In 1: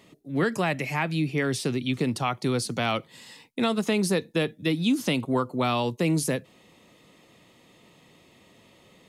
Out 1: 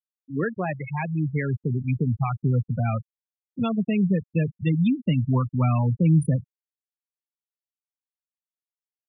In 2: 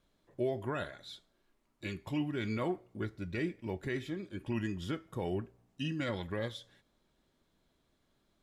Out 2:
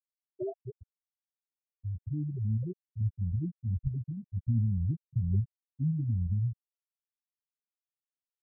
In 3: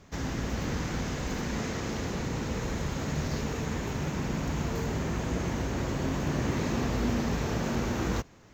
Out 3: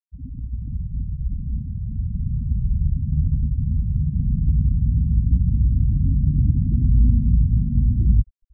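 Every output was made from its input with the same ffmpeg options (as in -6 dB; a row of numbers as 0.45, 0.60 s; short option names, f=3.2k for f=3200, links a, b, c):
-af "asubboost=boost=12:cutoff=110,afftfilt=real='re*gte(hypot(re,im),0.141)':imag='im*gte(hypot(re,im),0.141)':win_size=1024:overlap=0.75"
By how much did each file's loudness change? +2.0, +4.5, +10.0 LU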